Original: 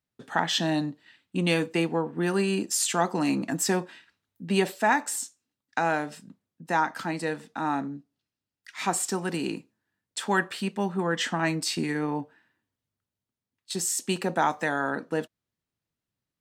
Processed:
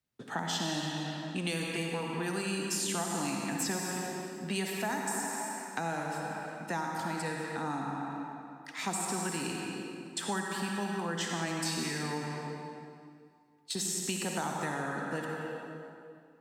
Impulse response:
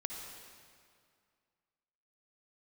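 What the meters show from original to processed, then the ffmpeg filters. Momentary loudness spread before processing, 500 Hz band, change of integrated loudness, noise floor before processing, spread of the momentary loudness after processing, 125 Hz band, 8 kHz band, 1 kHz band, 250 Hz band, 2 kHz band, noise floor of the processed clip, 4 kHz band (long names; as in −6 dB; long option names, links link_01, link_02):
10 LU, −8.0 dB, −7.0 dB, below −85 dBFS, 9 LU, −4.5 dB, −4.0 dB, −7.0 dB, −6.5 dB, −6.5 dB, −56 dBFS, −4.5 dB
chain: -filter_complex "[1:a]atrim=start_sample=2205[link_01];[0:a][link_01]afir=irnorm=-1:irlink=0,acrossover=split=200|710|5300[link_02][link_03][link_04][link_05];[link_02]acompressor=threshold=-42dB:ratio=4[link_06];[link_03]acompressor=threshold=-43dB:ratio=4[link_07];[link_04]acompressor=threshold=-40dB:ratio=4[link_08];[link_05]acompressor=threshold=-39dB:ratio=4[link_09];[link_06][link_07][link_08][link_09]amix=inputs=4:normalize=0,volume=2dB"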